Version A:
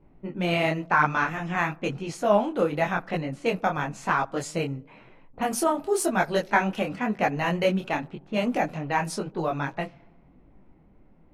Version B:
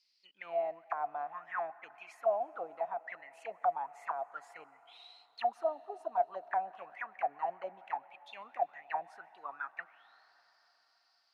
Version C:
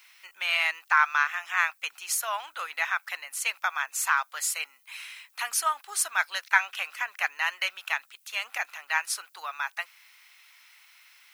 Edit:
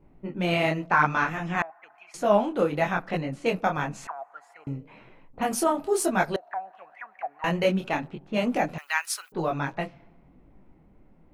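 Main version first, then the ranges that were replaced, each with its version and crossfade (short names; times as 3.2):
A
1.62–2.14 from B
4.07–4.67 from B
6.36–7.44 from B
8.78–9.32 from C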